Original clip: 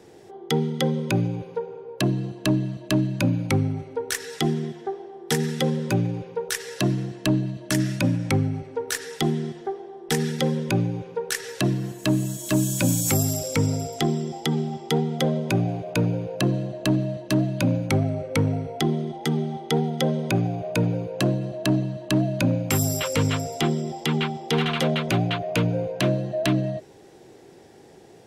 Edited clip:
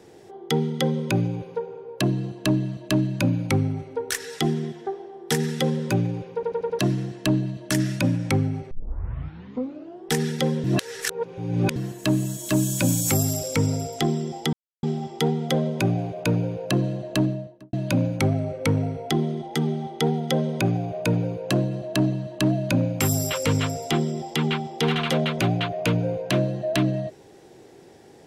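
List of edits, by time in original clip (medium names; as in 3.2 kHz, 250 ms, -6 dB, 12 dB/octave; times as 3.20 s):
6.34 s: stutter in place 0.09 s, 5 plays
8.71 s: tape start 1.38 s
10.64–11.76 s: reverse
14.53 s: insert silence 0.30 s
16.85–17.43 s: studio fade out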